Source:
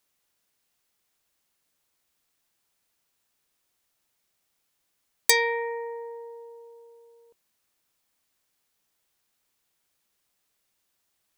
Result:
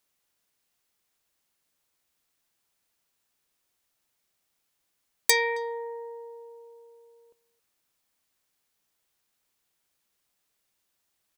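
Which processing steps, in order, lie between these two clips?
speakerphone echo 0.27 s, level -19 dB; gain -1.5 dB

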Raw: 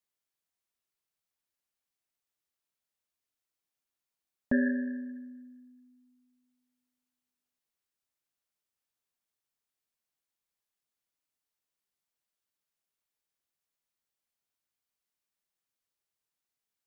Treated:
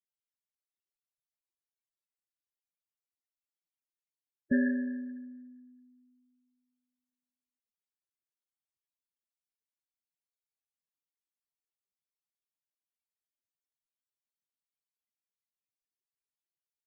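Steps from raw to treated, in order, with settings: Butterworth band-stop 930 Hz, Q 1.1; loudest bins only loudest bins 16

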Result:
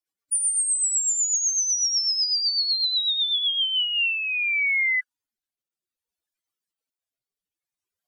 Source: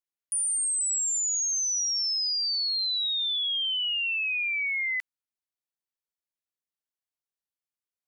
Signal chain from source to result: spectral contrast raised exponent 3.5; formant shift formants -4 st; rotary speaker horn 8 Hz, later 0.6 Hz, at 3.4; gain +7.5 dB

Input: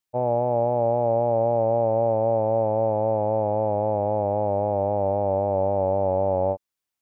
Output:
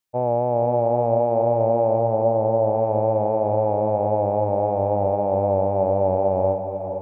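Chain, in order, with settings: 1.99–2.75 Bessel low-pass 1700 Hz; diffused feedback echo 0.458 s, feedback 49%, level -8 dB; gain +1.5 dB

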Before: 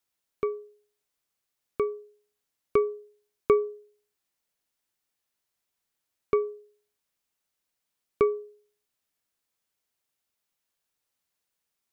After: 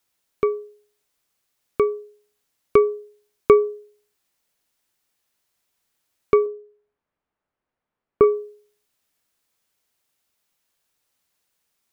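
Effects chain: 6.46–8.24 LPF 1400 Hz 12 dB/oct; gain +8 dB

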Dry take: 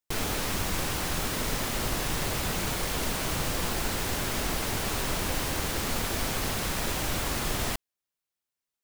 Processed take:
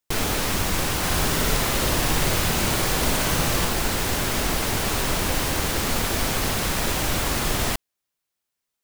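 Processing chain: 0.97–3.65 flutter echo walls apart 10.2 m, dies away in 0.75 s; gain +6 dB

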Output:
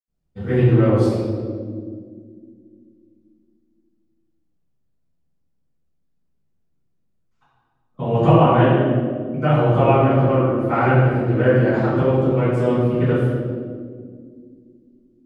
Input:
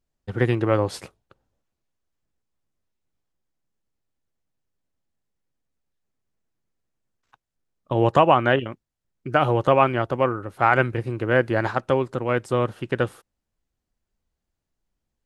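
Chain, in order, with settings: low shelf 410 Hz +8.5 dB; reverb RT60 2.0 s, pre-delay 76 ms, DRR -60 dB; gain -11 dB

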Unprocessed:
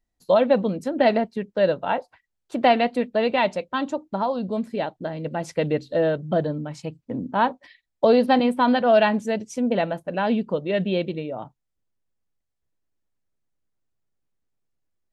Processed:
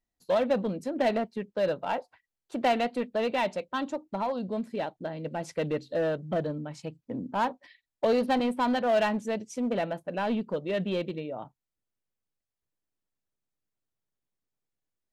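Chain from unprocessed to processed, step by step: low shelf 89 Hz -6.5 dB; in parallel at -9 dB: wavefolder -21 dBFS; on the sum: gain -7.5 dB

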